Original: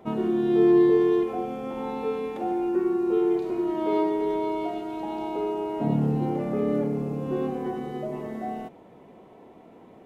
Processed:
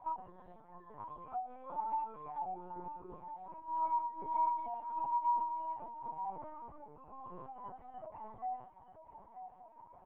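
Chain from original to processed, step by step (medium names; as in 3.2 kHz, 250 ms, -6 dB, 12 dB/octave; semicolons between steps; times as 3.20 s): reverb removal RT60 1.4 s; compression 12:1, threshold -33 dBFS, peak gain reduction 16 dB; flange 0.24 Hz, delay 9.3 ms, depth 2.2 ms, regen -14%; band-pass filter 920 Hz, Q 8.9; chorus voices 6, 0.83 Hz, delay 12 ms, depth 1.7 ms; delay 930 ms -10.5 dB; LPC vocoder at 8 kHz pitch kept; trim +14.5 dB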